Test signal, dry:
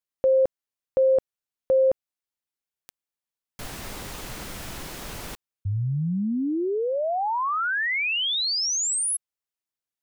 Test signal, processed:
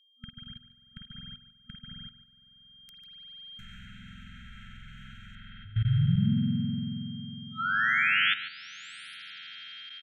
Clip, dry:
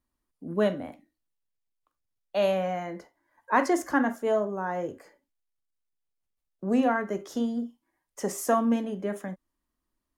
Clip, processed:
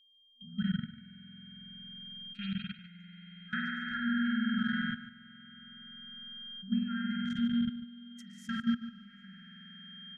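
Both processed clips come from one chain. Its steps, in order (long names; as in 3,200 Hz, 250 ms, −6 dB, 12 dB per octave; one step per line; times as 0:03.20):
adaptive Wiener filter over 9 samples
treble cut that deepens with the level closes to 1,200 Hz, closed at −22 dBFS
in parallel at −2 dB: downward compressor 5 to 1, threshold −34 dBFS
on the sum: spring reverb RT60 3.6 s, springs 46 ms, chirp 40 ms, DRR −5.5 dB
steady tone 3,200 Hz −40 dBFS
output level in coarse steps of 21 dB
brick-wall band-stop 240–1,300 Hz
on a send: single-tap delay 146 ms −13.5 dB
on the sum: level −3 dB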